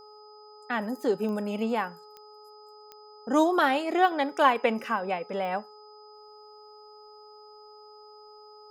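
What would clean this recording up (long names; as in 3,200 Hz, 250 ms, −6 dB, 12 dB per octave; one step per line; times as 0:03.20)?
click removal
hum removal 423.1 Hz, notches 3
notch filter 5,000 Hz, Q 30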